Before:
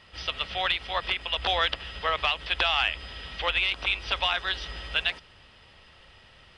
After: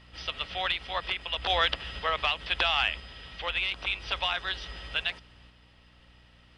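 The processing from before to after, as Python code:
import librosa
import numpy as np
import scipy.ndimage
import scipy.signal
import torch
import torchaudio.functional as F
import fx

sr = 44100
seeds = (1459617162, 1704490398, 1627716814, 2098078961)

y = fx.add_hum(x, sr, base_hz=60, snr_db=23)
y = fx.tremolo_random(y, sr, seeds[0], hz=2.0, depth_pct=55)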